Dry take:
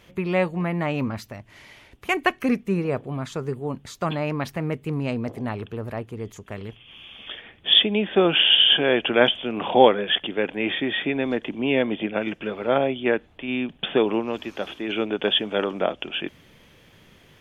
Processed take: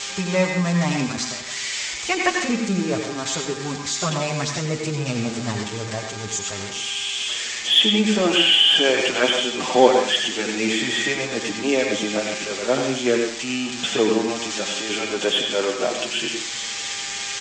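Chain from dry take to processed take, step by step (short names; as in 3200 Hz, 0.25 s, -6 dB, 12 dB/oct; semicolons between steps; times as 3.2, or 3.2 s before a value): switching spikes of -15 dBFS; steep low-pass 7800 Hz 72 dB/oct; in parallel at -6.5 dB: soft clip -15.5 dBFS, distortion -11 dB; on the sum: buzz 400 Hz, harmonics 4, -43 dBFS -1 dB/oct; on a send at -2.5 dB: reverb RT60 0.45 s, pre-delay 77 ms; on the sum: endless flanger 6.9 ms -0.35 Hz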